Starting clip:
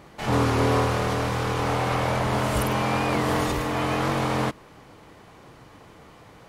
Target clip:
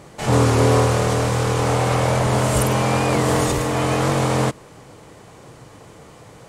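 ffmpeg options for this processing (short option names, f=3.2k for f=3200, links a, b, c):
-af "equalizer=f=125:t=o:w=1:g=6,equalizer=f=500:t=o:w=1:g=5,equalizer=f=8k:t=o:w=1:g=11,volume=2dB"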